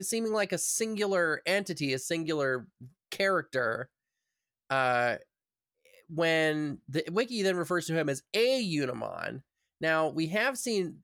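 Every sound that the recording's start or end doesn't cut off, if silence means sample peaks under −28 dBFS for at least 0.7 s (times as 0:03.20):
0:04.71–0:05.15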